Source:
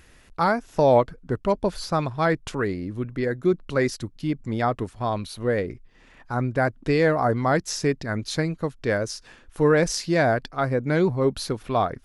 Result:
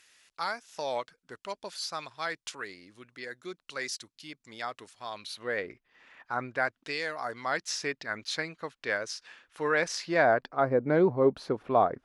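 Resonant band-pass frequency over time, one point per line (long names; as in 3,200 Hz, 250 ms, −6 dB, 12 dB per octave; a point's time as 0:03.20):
resonant band-pass, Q 0.65
0:05.06 5,500 Hz
0:05.68 1,800 Hz
0:06.44 1,800 Hz
0:07.08 6,200 Hz
0:07.78 2,500 Hz
0:09.69 2,500 Hz
0:10.68 590 Hz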